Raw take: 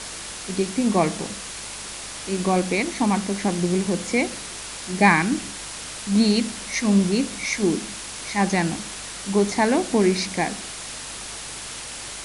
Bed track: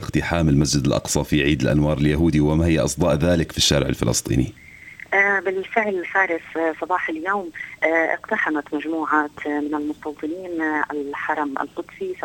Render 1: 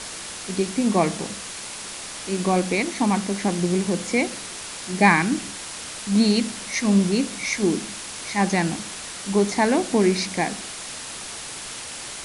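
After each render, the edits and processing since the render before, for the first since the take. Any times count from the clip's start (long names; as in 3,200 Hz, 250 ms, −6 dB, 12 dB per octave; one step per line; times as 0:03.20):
hum removal 50 Hz, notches 3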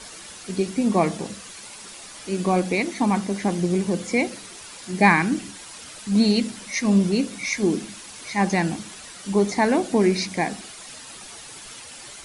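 broadband denoise 9 dB, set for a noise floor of −35 dBFS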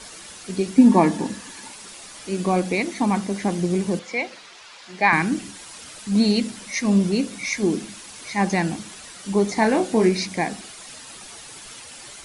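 0:00.78–0:01.72: hollow resonant body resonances 270/900/1,700 Hz, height 13 dB
0:03.99–0:05.13: three-way crossover with the lows and the highs turned down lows −14 dB, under 520 Hz, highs −19 dB, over 5,600 Hz
0:09.54–0:10.09: double-tracking delay 27 ms −6 dB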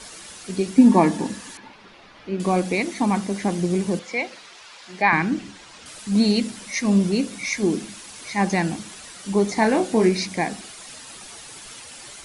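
0:01.57–0:02.40: high-frequency loss of the air 300 metres
0:05.02–0:05.86: high-frequency loss of the air 95 metres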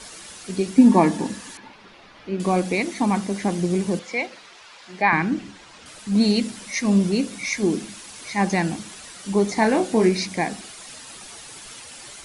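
0:04.26–0:06.21: high-shelf EQ 3,800 Hz −4.5 dB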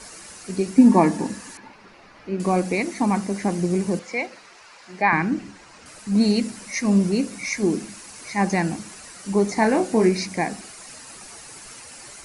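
parametric band 3,400 Hz −9.5 dB 0.43 octaves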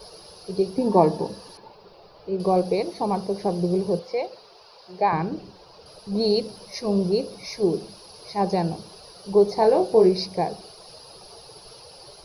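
drawn EQ curve 170 Hz 0 dB, 250 Hz −15 dB, 430 Hz +7 dB, 990 Hz −2 dB, 2,000 Hz −18 dB, 3,000 Hz −5 dB, 4,900 Hz +4 dB, 7,700 Hz −30 dB, 13,000 Hz +11 dB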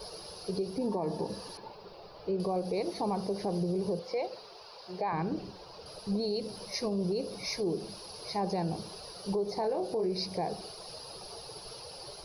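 downward compressor 2 to 1, threshold −28 dBFS, peak gain reduction 9.5 dB
brickwall limiter −24 dBFS, peak gain reduction 10.5 dB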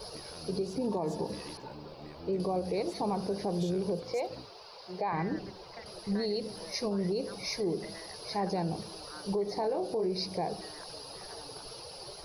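mix in bed track −30.5 dB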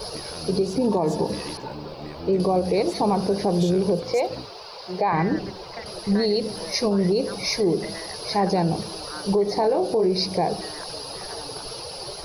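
level +10.5 dB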